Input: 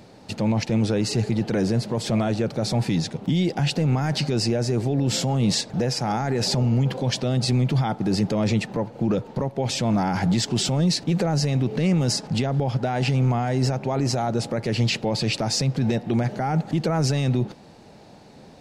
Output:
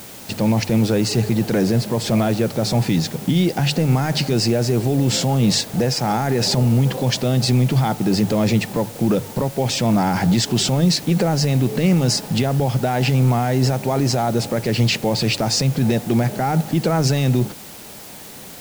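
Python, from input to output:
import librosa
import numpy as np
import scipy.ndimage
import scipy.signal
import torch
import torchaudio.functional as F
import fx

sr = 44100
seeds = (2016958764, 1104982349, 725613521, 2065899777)

p1 = fx.hum_notches(x, sr, base_hz=50, count=3)
p2 = fx.quant_dither(p1, sr, seeds[0], bits=6, dither='triangular')
y = p1 + (p2 * librosa.db_to_amplitude(-3.0))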